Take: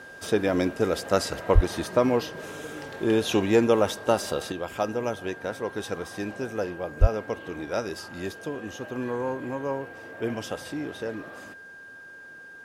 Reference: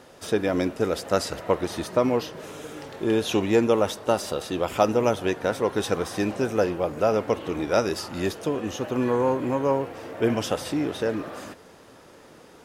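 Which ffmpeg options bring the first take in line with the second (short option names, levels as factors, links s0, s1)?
-filter_complex "[0:a]bandreject=f=1600:w=30,asplit=3[s0][s1][s2];[s0]afade=t=out:st=1.54:d=0.02[s3];[s1]highpass=f=140:w=0.5412,highpass=f=140:w=1.3066,afade=t=in:st=1.54:d=0.02,afade=t=out:st=1.66:d=0.02[s4];[s2]afade=t=in:st=1.66:d=0.02[s5];[s3][s4][s5]amix=inputs=3:normalize=0,asplit=3[s6][s7][s8];[s6]afade=t=out:st=7:d=0.02[s9];[s7]highpass=f=140:w=0.5412,highpass=f=140:w=1.3066,afade=t=in:st=7:d=0.02,afade=t=out:st=7.12:d=0.02[s10];[s8]afade=t=in:st=7.12:d=0.02[s11];[s9][s10][s11]amix=inputs=3:normalize=0,asetnsamples=n=441:p=0,asendcmd='4.52 volume volume 7dB',volume=1"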